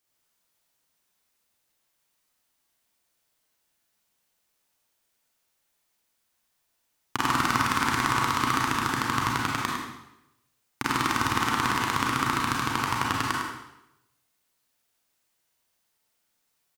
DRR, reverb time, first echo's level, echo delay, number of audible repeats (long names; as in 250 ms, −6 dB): −3.5 dB, 0.85 s, −6.0 dB, 104 ms, 1